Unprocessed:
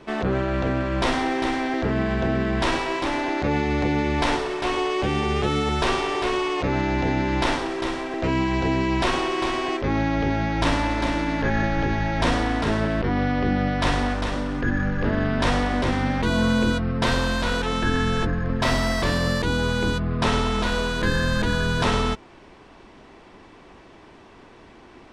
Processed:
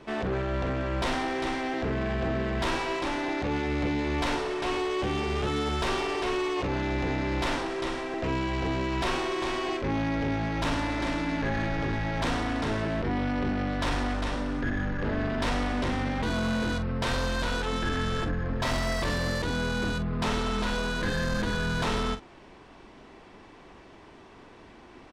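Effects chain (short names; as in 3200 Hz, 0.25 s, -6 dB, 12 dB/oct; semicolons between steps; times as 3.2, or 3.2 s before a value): soft clip -20.5 dBFS, distortion -13 dB; doubler 44 ms -10.5 dB; gain -3 dB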